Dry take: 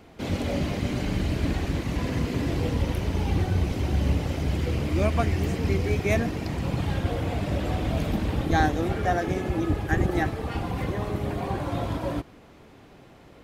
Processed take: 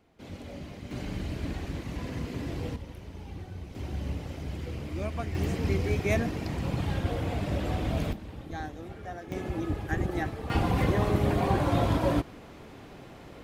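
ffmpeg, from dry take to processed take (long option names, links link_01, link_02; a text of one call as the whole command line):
ffmpeg -i in.wav -af "asetnsamples=nb_out_samples=441:pad=0,asendcmd='0.91 volume volume -8dB;2.76 volume volume -16.5dB;3.75 volume volume -10dB;5.35 volume volume -3dB;8.13 volume volume -15.5dB;9.32 volume volume -6dB;10.5 volume volume 3.5dB',volume=-14.5dB" out.wav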